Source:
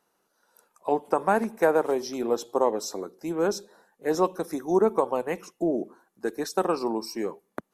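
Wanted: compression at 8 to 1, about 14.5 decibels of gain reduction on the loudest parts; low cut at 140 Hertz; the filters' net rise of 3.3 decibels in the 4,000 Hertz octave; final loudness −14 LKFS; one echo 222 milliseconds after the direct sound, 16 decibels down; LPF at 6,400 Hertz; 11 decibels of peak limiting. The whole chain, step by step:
high-pass filter 140 Hz
low-pass filter 6,400 Hz
parametric band 4,000 Hz +6.5 dB
downward compressor 8 to 1, threshold −32 dBFS
brickwall limiter −27.5 dBFS
single-tap delay 222 ms −16 dB
level +25 dB

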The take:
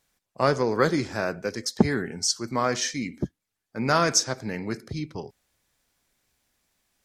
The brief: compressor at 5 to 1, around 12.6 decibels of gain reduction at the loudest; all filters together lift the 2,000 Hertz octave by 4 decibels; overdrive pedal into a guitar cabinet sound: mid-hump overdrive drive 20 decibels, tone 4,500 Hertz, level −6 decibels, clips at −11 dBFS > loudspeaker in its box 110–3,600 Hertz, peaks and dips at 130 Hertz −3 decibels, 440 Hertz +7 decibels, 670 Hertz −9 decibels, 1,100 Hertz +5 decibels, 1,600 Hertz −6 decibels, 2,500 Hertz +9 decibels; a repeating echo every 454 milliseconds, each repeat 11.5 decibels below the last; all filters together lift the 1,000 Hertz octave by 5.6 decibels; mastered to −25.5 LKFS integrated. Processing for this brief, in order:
parametric band 1,000 Hz +4 dB
parametric band 2,000 Hz +4.5 dB
downward compressor 5 to 1, threshold −27 dBFS
repeating echo 454 ms, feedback 27%, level −11.5 dB
mid-hump overdrive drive 20 dB, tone 4,500 Hz, level −6 dB, clips at −11 dBFS
loudspeaker in its box 110–3,600 Hz, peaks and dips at 130 Hz −3 dB, 440 Hz +7 dB, 670 Hz −9 dB, 1,100 Hz +5 dB, 1,600 Hz −6 dB, 2,500 Hz +9 dB
level −2 dB

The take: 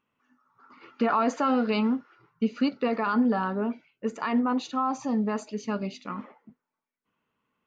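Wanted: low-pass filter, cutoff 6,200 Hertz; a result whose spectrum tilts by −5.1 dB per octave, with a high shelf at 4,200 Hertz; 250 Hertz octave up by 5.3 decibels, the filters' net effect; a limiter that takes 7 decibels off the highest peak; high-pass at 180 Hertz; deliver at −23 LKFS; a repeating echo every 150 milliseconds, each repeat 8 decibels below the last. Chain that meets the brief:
high-pass filter 180 Hz
low-pass filter 6,200 Hz
parametric band 250 Hz +7 dB
high-shelf EQ 4,200 Hz +7.5 dB
brickwall limiter −16.5 dBFS
repeating echo 150 ms, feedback 40%, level −8 dB
level +2.5 dB

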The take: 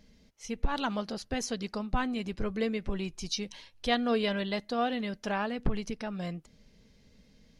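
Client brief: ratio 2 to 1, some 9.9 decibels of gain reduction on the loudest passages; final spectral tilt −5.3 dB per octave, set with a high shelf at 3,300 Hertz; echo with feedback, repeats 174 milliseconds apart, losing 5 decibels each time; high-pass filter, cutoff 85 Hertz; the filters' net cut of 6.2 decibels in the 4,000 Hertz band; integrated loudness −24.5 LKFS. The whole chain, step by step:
high-pass filter 85 Hz
high-shelf EQ 3,300 Hz −6 dB
parametric band 4,000 Hz −4 dB
downward compressor 2 to 1, threshold −43 dBFS
repeating echo 174 ms, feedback 56%, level −5 dB
level +16 dB

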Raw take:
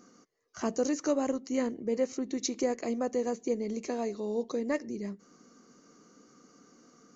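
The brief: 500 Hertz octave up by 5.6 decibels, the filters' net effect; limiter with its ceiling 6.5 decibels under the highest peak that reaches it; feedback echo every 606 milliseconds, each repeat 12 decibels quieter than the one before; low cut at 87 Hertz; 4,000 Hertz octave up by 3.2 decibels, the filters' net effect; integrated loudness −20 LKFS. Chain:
high-pass filter 87 Hz
parametric band 500 Hz +6 dB
parametric band 4,000 Hz +4 dB
brickwall limiter −19.5 dBFS
repeating echo 606 ms, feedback 25%, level −12 dB
level +10.5 dB

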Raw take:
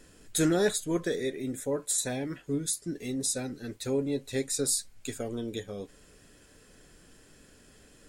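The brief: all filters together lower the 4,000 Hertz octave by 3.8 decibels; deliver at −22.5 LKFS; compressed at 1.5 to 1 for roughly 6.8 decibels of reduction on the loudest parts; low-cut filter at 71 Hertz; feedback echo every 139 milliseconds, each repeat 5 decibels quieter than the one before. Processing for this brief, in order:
high-pass filter 71 Hz
parametric band 4,000 Hz −4.5 dB
downward compressor 1.5 to 1, threshold −41 dBFS
repeating echo 139 ms, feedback 56%, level −5 dB
level +12.5 dB

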